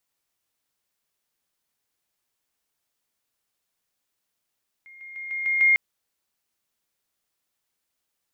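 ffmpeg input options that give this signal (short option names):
-f lavfi -i "aevalsrc='pow(10,(-44.5+6*floor(t/0.15))/20)*sin(2*PI*2130*t)':d=0.9:s=44100"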